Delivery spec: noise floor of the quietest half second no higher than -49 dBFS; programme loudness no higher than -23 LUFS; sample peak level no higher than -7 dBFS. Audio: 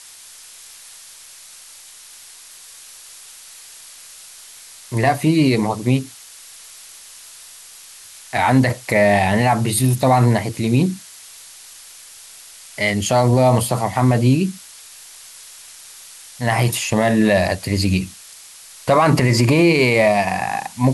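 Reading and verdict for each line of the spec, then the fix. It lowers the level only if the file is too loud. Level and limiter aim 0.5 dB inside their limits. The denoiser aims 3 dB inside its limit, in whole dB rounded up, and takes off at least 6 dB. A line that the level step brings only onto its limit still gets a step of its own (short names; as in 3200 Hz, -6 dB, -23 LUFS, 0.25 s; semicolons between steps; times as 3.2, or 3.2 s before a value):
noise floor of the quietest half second -42 dBFS: fail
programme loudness -17.0 LUFS: fail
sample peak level -4.5 dBFS: fail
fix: denoiser 6 dB, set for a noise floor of -42 dBFS; gain -6.5 dB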